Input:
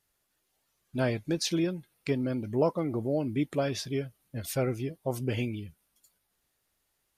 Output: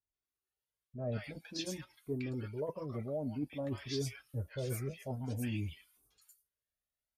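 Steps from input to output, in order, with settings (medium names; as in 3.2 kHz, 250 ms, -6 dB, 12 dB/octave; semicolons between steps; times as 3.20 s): gate with hold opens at -56 dBFS; reverse; compression 10:1, threshold -36 dBFS, peak gain reduction 16 dB; reverse; comb of notches 170 Hz; three bands offset in time lows, mids, highs 140/250 ms, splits 1/5.9 kHz; Shepard-style flanger rising 0.52 Hz; trim +8 dB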